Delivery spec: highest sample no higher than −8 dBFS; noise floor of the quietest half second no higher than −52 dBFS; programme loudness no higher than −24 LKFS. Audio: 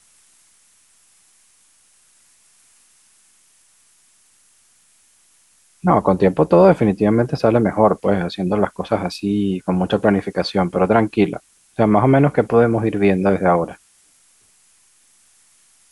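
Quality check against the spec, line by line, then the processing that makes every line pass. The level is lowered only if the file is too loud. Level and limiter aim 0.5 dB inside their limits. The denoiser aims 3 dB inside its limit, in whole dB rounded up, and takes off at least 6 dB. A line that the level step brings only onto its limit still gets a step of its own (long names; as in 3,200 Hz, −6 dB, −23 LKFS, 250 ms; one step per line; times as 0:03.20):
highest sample −2.5 dBFS: out of spec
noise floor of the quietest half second −56 dBFS: in spec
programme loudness −17.0 LKFS: out of spec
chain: level −7.5 dB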